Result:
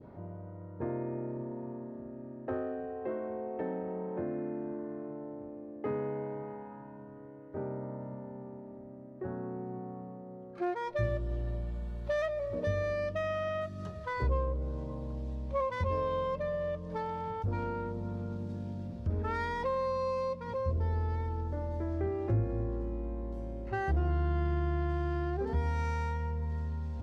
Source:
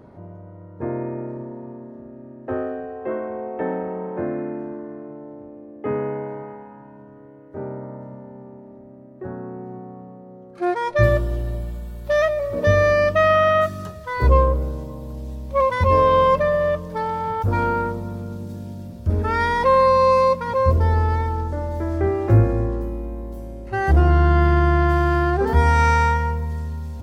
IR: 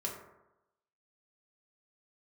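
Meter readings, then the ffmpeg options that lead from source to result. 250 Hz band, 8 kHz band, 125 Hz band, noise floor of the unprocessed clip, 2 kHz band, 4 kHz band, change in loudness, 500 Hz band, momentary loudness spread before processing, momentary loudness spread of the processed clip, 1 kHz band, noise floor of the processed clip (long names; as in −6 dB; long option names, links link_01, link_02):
−11.0 dB, can't be measured, −13.0 dB, −43 dBFS, −16.5 dB, −16.0 dB, −15.5 dB, −14.0 dB, 19 LU, 13 LU, −17.0 dB, −48 dBFS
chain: -af "acompressor=threshold=-30dB:ratio=2,adynamicequalizer=threshold=0.00891:dfrequency=1300:dqfactor=0.78:tfrequency=1300:tqfactor=0.78:attack=5:release=100:ratio=0.375:range=4:mode=cutabove:tftype=bell,adynamicsmooth=sensitivity=6.5:basefreq=4500,volume=-4.5dB"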